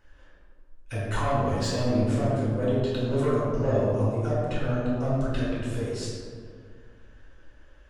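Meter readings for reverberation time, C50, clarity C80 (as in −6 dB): 2.0 s, −2.0 dB, 0.5 dB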